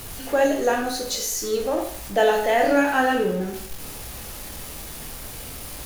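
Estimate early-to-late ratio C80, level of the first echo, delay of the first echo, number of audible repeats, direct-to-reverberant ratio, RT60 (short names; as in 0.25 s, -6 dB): 10.0 dB, none, none, none, 2.0 dB, 0.55 s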